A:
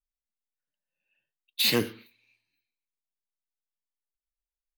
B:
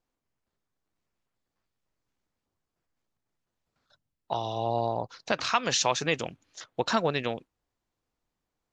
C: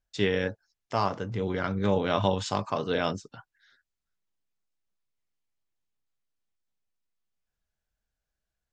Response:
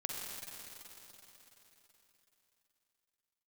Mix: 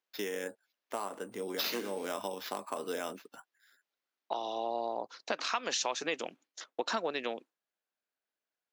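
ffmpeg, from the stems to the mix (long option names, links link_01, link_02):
-filter_complex "[0:a]volume=2.5dB[link_01];[1:a]agate=range=-33dB:threshold=-46dB:ratio=3:detection=peak,volume=-2dB[link_02];[2:a]equalizer=frequency=5400:width=3.9:gain=-7,volume=-3.5dB[link_03];[link_01][link_03]amix=inputs=2:normalize=0,acrusher=samples=5:mix=1:aa=0.000001,acompressor=threshold=-31dB:ratio=4,volume=0dB[link_04];[link_02][link_04]amix=inputs=2:normalize=0,highpass=frequency=250:width=0.5412,highpass=frequency=250:width=1.3066,acompressor=threshold=-31dB:ratio=2.5"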